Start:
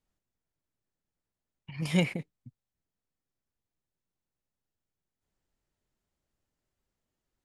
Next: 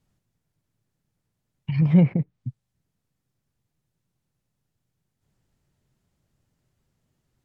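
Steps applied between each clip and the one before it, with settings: treble ducked by the level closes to 1200 Hz, closed at -30 dBFS; bell 130 Hz +12.5 dB 1.3 oct; in parallel at +3 dB: compressor, threshold -28 dBFS, peak gain reduction 13 dB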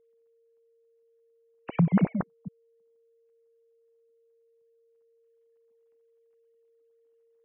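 sine-wave speech; whine 460 Hz -58 dBFS; gain -5.5 dB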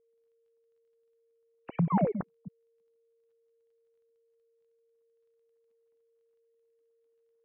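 painted sound fall, 1.9–2.12, 380–1200 Hz -24 dBFS; crackle 18/s -62 dBFS; air absorption 220 m; gain -5 dB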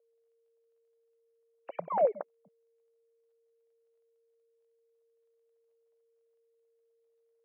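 resonant high-pass 580 Hz, resonance Q 4.9; gain -5 dB

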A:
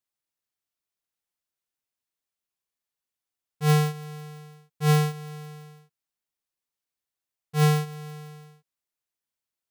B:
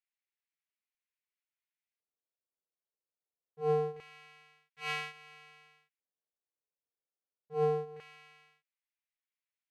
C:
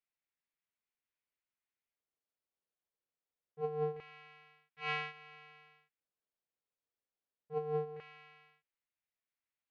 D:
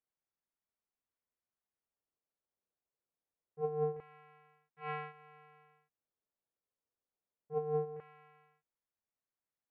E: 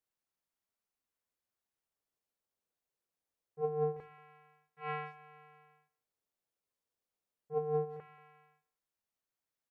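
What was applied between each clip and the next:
LFO band-pass square 0.25 Hz 480–2200 Hz; reverse echo 37 ms -9 dB
negative-ratio compressor -32 dBFS, ratio -0.5; air absorption 230 m; gain -1 dB
LPF 1200 Hz 12 dB/oct; gain +1.5 dB
de-hum 53.72 Hz, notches 7; speakerphone echo 0.18 s, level -21 dB; gain +1.5 dB

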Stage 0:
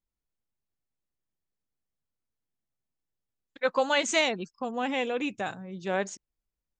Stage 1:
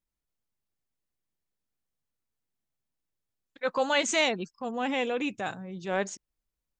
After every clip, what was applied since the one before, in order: transient shaper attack -5 dB, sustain 0 dB; gain +1 dB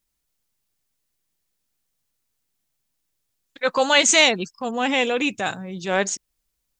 high shelf 2500 Hz +8.5 dB; gain +6.5 dB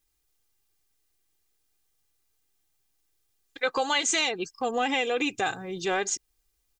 comb 2.5 ms, depth 60%; compressor 6:1, threshold -23 dBFS, peak gain reduction 12.5 dB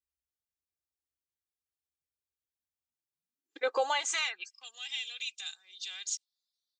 high-pass sweep 64 Hz -> 3700 Hz, 2.77–4.74; spectral noise reduction 15 dB; gain -7.5 dB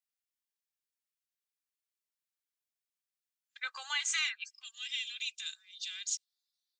HPF 1400 Hz 24 dB/oct

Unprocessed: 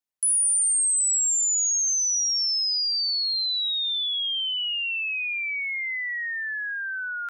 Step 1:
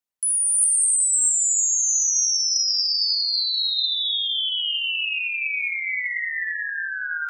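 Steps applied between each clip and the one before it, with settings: non-linear reverb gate 0.42 s rising, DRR 1 dB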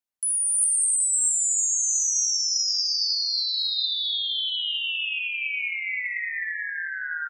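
echo 0.702 s -16 dB; gain -3 dB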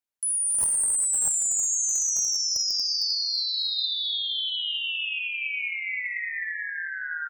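one-sided fold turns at -16.5 dBFS; gain -1.5 dB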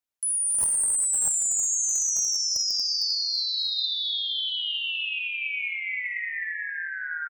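feedback echo 0.582 s, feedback 32%, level -23.5 dB

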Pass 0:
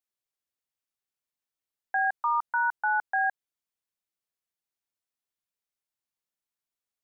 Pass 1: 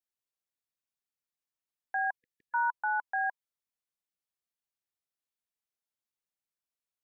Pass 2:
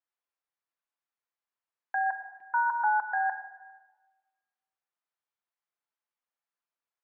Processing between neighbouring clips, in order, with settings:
spectral delete 2.17–2.54, 500–1700 Hz; dynamic EQ 1000 Hz, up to +7 dB, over -45 dBFS, Q 7.3; gain -5 dB
band-pass 1100 Hz, Q 1; shoebox room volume 1100 m³, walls mixed, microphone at 0.8 m; gain +5.5 dB

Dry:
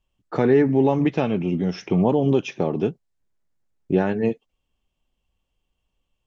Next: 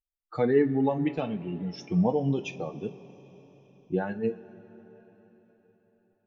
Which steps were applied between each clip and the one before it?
per-bin expansion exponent 2; two-slope reverb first 0.23 s, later 4.7 s, from -21 dB, DRR 7 dB; gain -3.5 dB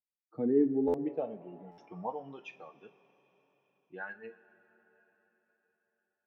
band-pass sweep 240 Hz -> 1600 Hz, 0.29–2.54; stuck buffer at 0.87/1.71, samples 512, times 5

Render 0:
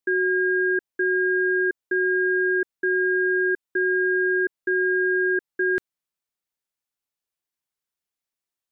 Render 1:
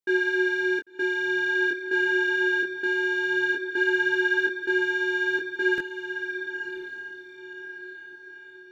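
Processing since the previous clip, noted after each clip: sample leveller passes 1; diffused feedback echo 1.077 s, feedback 42%, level -9 dB; detuned doubles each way 17 cents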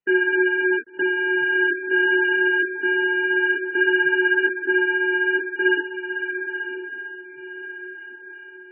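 gain +5 dB; MP3 8 kbps 22050 Hz

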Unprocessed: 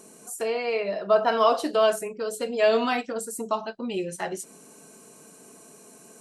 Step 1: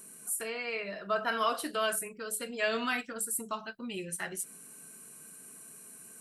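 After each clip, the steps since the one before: EQ curve 110 Hz 0 dB, 450 Hz -10 dB, 830 Hz -11 dB, 1500 Hz +2 dB, 6500 Hz -5 dB, 9600 Hz +8 dB; gain -2.5 dB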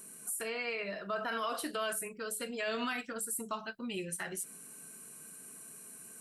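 limiter -27 dBFS, peak gain reduction 8.5 dB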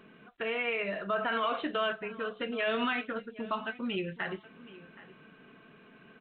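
echo 0.772 s -18.5 dB; gain +5 dB; µ-law 64 kbps 8000 Hz

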